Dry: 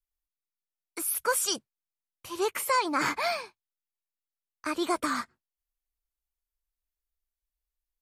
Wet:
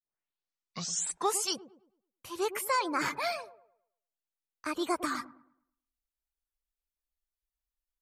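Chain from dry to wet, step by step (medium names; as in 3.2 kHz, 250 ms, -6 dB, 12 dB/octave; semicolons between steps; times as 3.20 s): tape start-up on the opening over 1.57 s; reverb removal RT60 0.57 s; on a send: feedback echo behind a low-pass 108 ms, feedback 35%, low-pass 770 Hz, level -11 dB; on the sum: trim -3 dB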